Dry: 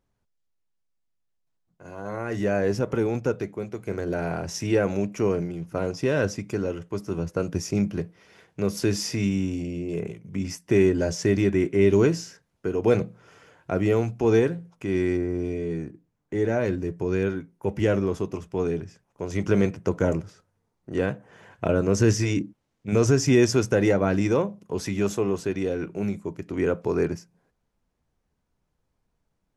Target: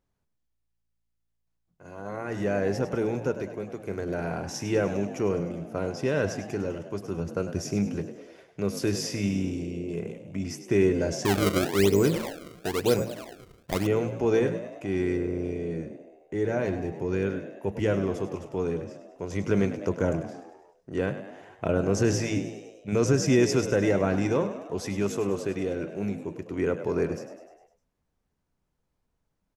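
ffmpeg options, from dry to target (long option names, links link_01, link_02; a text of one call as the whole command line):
ffmpeg -i in.wav -filter_complex "[0:a]bandreject=frequency=111.7:width_type=h:width=4,bandreject=frequency=223.4:width_type=h:width=4,bandreject=frequency=335.1:width_type=h:width=4,asplit=7[link_01][link_02][link_03][link_04][link_05][link_06][link_07];[link_02]adelay=101,afreqshift=56,volume=-11.5dB[link_08];[link_03]adelay=202,afreqshift=112,volume=-16.4dB[link_09];[link_04]adelay=303,afreqshift=168,volume=-21.3dB[link_10];[link_05]adelay=404,afreqshift=224,volume=-26.1dB[link_11];[link_06]adelay=505,afreqshift=280,volume=-31dB[link_12];[link_07]adelay=606,afreqshift=336,volume=-35.9dB[link_13];[link_01][link_08][link_09][link_10][link_11][link_12][link_13]amix=inputs=7:normalize=0,asettb=1/sr,asplit=3[link_14][link_15][link_16];[link_14]atrim=end=11.254[link_17];[link_15]atrim=start=11.25:end=13.87,asetpts=PTS-STARTPTS,afade=type=in:duration=0.004:curve=qsin,afade=type=out:start_time=2.616:duration=0.004:curve=qsin,acrusher=samples=29:mix=1:aa=0.000001:lfo=1:lforange=46.4:lforate=1[link_18];[link_16]atrim=start=13.866[link_19];[link_17][link_18]acrossfade=duration=0.004:curve1=hsin:curve2=qsin[link_20];[link_20][link_19]acrossfade=duration=0.004:curve1=qsin:curve2=hsin,volume=-3dB" out.wav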